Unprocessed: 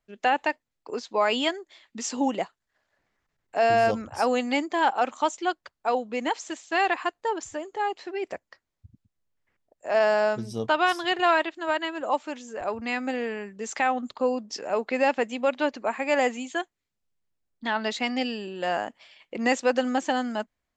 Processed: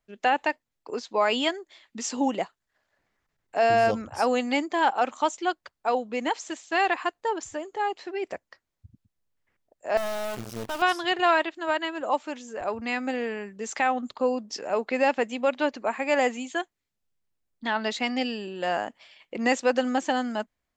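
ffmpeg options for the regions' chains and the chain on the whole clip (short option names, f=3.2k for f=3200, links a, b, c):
-filter_complex "[0:a]asettb=1/sr,asplit=3[a][b][c];[a]atrim=end=9.974[d];[b]atrim=start=9.97:end=10.82,asetpts=PTS-STARTPTS,afade=t=in:d=0.004:c=qsin,afade=t=out:st=0.846:d=0.004:c=qsin,aeval=exprs='(tanh(31.6*val(0)+0.75)-tanh(0.75))/31.6':c=same,acrusher=bits=7:dc=4:mix=0:aa=0.000001[e];[c]atrim=start=10.816[f];[d][e]acrossfade=d=0.004:c1=hsin:c2=qsin[g];[g][f]acrossfade=d=0.004:c1=qsin:c2=hsin"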